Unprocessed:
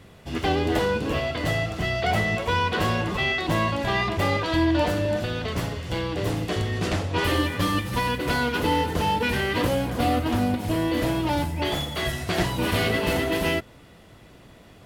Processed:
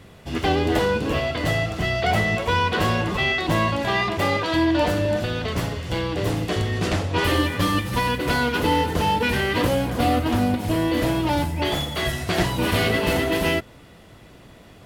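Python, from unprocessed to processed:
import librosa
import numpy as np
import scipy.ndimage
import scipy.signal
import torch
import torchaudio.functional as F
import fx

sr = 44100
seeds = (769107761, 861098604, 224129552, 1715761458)

y = fx.highpass(x, sr, hz=130.0, slope=6, at=(3.83, 4.83))
y = y * 10.0 ** (2.5 / 20.0)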